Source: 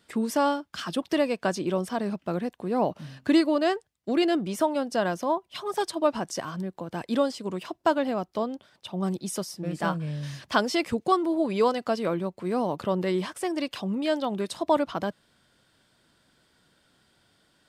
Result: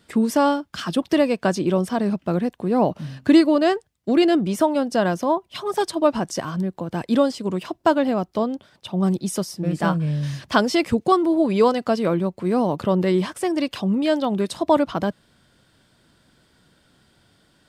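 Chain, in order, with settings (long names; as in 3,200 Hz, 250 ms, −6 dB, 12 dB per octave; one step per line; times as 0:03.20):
low-shelf EQ 300 Hz +6.5 dB
level +4 dB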